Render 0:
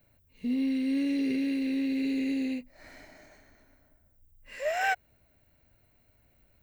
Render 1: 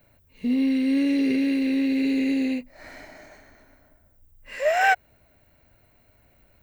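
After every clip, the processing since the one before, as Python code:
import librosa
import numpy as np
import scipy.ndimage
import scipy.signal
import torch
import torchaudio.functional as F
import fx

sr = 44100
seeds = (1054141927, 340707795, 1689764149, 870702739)

y = fx.peak_eq(x, sr, hz=940.0, db=4.0, octaves=2.8)
y = y * 10.0 ** (5.0 / 20.0)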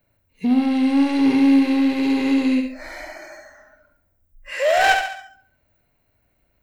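y = 10.0 ** (-22.0 / 20.0) * np.tanh(x / 10.0 ** (-22.0 / 20.0))
y = fx.room_flutter(y, sr, wall_m=11.9, rt60_s=0.73)
y = fx.noise_reduce_blind(y, sr, reduce_db=16)
y = y * 10.0 ** (8.0 / 20.0)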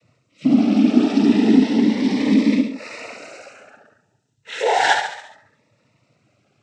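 y = fx.law_mismatch(x, sr, coded='mu')
y = fx.noise_vocoder(y, sr, seeds[0], bands=12)
y = fx.notch_cascade(y, sr, direction='rising', hz=0.34)
y = y * 10.0 ** (2.0 / 20.0)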